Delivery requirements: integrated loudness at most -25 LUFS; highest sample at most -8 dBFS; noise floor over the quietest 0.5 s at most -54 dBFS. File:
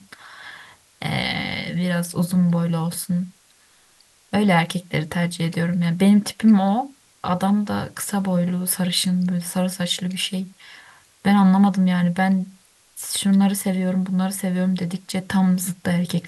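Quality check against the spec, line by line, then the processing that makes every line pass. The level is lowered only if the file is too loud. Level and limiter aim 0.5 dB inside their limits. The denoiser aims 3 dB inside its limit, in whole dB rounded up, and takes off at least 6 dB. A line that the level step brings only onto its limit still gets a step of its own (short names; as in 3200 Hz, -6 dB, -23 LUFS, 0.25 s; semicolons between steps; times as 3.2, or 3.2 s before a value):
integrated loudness -21.0 LUFS: fail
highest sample -5.5 dBFS: fail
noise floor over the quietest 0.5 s -56 dBFS: OK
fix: gain -4.5 dB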